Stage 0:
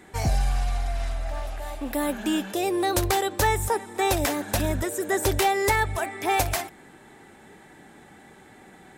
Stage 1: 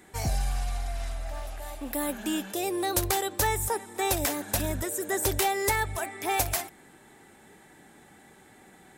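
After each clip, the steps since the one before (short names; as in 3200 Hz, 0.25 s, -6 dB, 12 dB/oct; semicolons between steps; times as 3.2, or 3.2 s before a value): high shelf 6500 Hz +9 dB; gain -5 dB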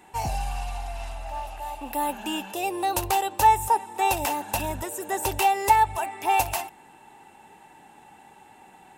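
small resonant body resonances 880/2700 Hz, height 16 dB, ringing for 20 ms; gain -2.5 dB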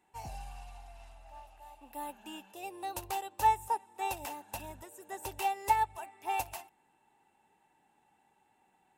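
upward expander 1.5:1, over -36 dBFS; gain -8 dB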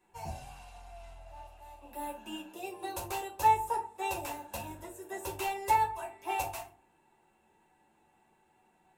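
reverb RT60 0.35 s, pre-delay 5 ms, DRR -3 dB; gain -3 dB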